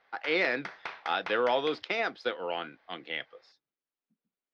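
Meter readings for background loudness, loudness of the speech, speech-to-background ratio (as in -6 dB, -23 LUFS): -43.0 LUFS, -31.0 LUFS, 12.0 dB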